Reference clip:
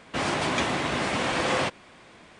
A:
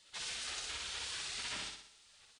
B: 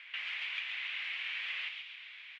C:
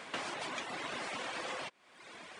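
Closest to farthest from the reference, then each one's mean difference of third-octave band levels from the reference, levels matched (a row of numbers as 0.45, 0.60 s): C, A, B; 5.5, 10.0, 18.5 dB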